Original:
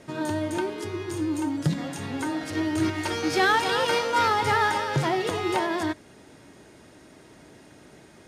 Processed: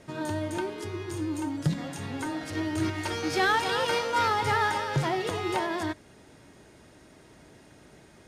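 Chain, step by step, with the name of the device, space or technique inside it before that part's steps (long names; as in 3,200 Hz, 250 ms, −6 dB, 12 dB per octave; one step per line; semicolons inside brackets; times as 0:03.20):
low shelf boost with a cut just above (low-shelf EQ 74 Hz +7.5 dB; parametric band 290 Hz −2 dB)
level −3 dB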